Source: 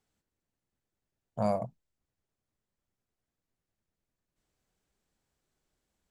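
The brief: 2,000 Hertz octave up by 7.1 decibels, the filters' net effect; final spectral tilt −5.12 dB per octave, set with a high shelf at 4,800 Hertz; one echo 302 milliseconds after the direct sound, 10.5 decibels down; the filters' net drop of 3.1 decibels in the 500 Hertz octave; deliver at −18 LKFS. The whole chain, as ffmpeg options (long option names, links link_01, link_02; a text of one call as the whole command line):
ffmpeg -i in.wav -af "equalizer=frequency=500:width_type=o:gain=-5,equalizer=frequency=2000:width_type=o:gain=8.5,highshelf=frequency=4800:gain=3.5,aecho=1:1:302:0.299,volume=18dB" out.wav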